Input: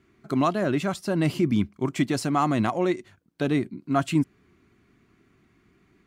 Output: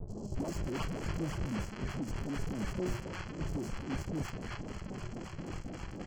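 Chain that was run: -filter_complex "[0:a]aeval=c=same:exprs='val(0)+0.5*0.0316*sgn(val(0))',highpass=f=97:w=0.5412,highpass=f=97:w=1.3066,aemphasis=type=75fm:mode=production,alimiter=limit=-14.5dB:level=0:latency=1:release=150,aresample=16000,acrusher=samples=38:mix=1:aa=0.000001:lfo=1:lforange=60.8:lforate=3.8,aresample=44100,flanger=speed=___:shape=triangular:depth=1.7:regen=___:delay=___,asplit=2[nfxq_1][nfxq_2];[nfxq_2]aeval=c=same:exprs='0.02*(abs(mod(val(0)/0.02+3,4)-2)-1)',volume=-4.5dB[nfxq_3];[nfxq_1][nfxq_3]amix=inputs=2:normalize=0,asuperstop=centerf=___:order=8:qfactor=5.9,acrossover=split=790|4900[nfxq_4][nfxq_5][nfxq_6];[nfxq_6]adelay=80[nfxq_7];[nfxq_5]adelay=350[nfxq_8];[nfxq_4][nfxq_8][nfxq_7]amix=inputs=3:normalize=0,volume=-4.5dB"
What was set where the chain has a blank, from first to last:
0.45, 87, 4.5, 3700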